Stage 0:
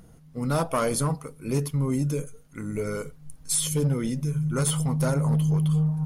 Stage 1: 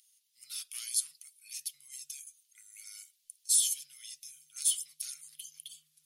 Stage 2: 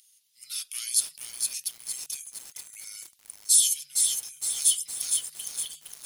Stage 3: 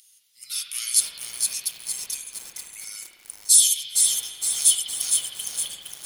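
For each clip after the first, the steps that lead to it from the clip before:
inverse Chebyshev high-pass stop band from 930 Hz, stop band 60 dB
lo-fi delay 0.462 s, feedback 55%, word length 8-bit, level -4 dB; gain +6.5 dB
spring tank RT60 1.7 s, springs 54 ms, chirp 40 ms, DRR 2 dB; gain +4.5 dB

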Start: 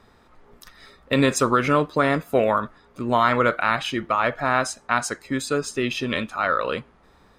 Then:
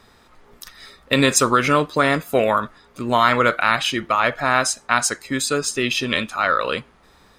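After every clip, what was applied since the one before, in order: high shelf 2200 Hz +9 dB; gain +1 dB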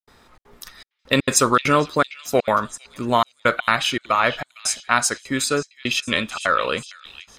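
step gate ".xxxx.xxxxx...xx" 200 bpm -60 dB; delay with a stepping band-pass 0.457 s, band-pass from 3100 Hz, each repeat 0.7 oct, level -11 dB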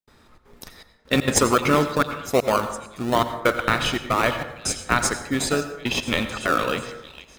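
in parallel at -5.5 dB: decimation with a swept rate 34×, swing 60% 1.1 Hz; on the sum: plate-style reverb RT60 0.86 s, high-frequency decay 0.45×, pre-delay 75 ms, DRR 9.5 dB; gain -3.5 dB

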